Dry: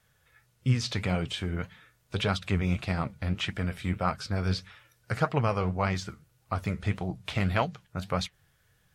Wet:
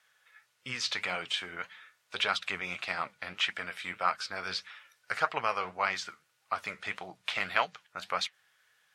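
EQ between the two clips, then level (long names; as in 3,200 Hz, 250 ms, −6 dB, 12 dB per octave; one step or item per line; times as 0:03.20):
resonant band-pass 1,500 Hz, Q 0.64
spectral tilt +3 dB per octave
+1.5 dB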